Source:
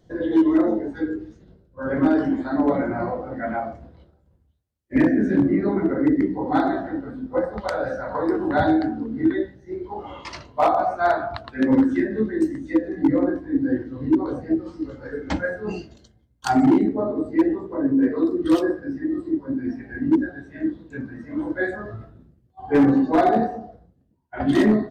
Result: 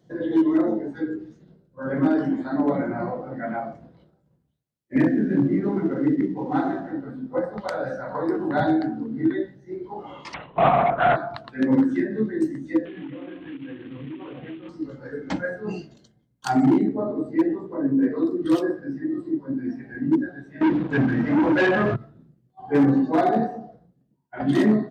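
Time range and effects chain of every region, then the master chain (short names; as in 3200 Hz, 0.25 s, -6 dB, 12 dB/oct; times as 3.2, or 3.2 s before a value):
5.09–6.92 CVSD 64 kbps + air absorption 230 m + notch 630 Hz, Q 11
10.34–11.16 low shelf 410 Hz +4.5 dB + overdrive pedal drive 15 dB, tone 2600 Hz, clips at -8 dBFS + LPC vocoder at 8 kHz whisper
12.85–14.69 CVSD 16 kbps + high shelf 2100 Hz +10 dB + compressor 8:1, threshold -31 dBFS
20.61–21.96 notches 50/100/150/200/250/300 Hz + sample leveller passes 5 + LPF 2700 Hz
whole clip: HPF 54 Hz; resonant low shelf 110 Hz -7 dB, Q 3; gain -3 dB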